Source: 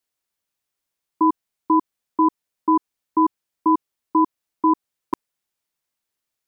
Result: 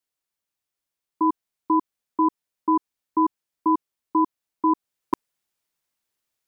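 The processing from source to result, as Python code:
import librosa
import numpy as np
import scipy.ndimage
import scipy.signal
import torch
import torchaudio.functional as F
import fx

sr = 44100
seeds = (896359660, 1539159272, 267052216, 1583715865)

y = fx.rider(x, sr, range_db=4, speed_s=0.5)
y = y * 10.0 ** (-3.0 / 20.0)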